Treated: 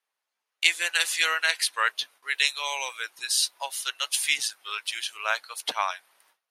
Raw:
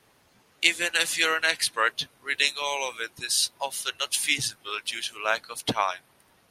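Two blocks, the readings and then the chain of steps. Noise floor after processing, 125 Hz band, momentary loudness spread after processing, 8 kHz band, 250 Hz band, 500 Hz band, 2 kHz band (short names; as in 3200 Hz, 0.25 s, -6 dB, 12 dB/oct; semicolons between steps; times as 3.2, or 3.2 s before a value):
-85 dBFS, under -30 dB, 8 LU, 0.0 dB, under -15 dB, -7.0 dB, 0.0 dB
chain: gate with hold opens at -49 dBFS; HPF 800 Hz 12 dB/oct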